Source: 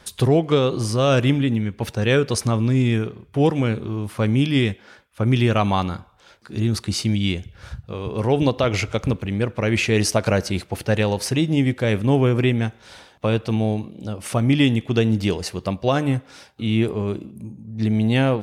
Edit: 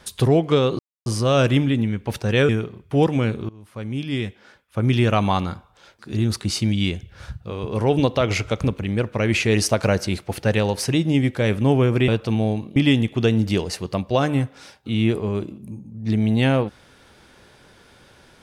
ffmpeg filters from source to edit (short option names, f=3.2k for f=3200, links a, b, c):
-filter_complex "[0:a]asplit=6[a][b][c][d][e][f];[a]atrim=end=0.79,asetpts=PTS-STARTPTS,afade=t=out:st=0.786:d=0.004:c=hsin,apad=pad_dur=0.27[g];[b]atrim=start=0.79:end=2.222,asetpts=PTS-STARTPTS,afade=t=in:d=0.004:c=hsin[h];[c]atrim=start=2.918:end=3.92,asetpts=PTS-STARTPTS,afade=t=out:st=0.998:d=0.004:c=hsin:silence=0.0841395[i];[d]atrim=start=3.92:end=12.512,asetpts=PTS-STARTPTS,afade=t=in:d=1.54:silence=0.0841395[j];[e]atrim=start=13.288:end=13.972[k];[f]atrim=start=14.488[l];[g][h]concat=n=2:v=0:a=1[m];[i][j]concat=n=2:v=0:a=1[n];[m][n]acrossfade=d=0.004:c1=hsin:c2=hsin[o];[o][k]acrossfade=d=0.004:c1=hsin:c2=hsin[p];[p][l]acrossfade=d=0.004:c1=hsin:c2=hsin"